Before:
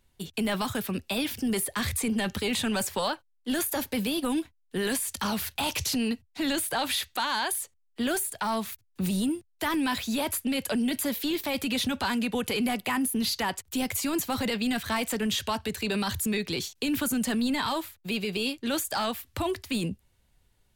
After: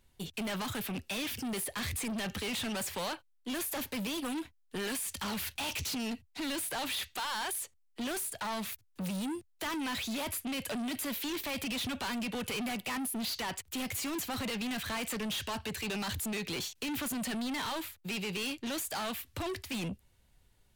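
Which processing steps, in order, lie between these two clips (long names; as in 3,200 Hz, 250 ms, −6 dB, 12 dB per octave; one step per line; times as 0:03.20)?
dynamic equaliser 2,600 Hz, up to +5 dB, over −47 dBFS, Q 1.4
soft clipping −33.5 dBFS, distortion −8 dB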